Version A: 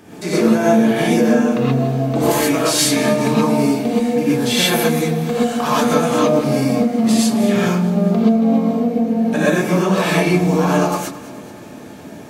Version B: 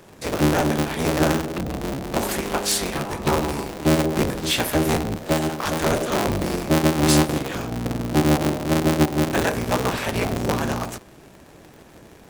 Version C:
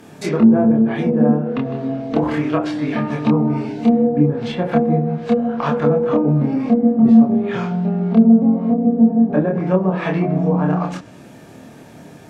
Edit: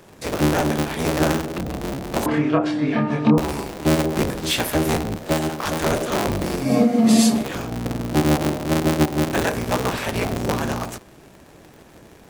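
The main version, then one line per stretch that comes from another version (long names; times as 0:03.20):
B
0:02.26–0:03.38: punch in from C
0:06.66–0:07.38: punch in from A, crossfade 0.16 s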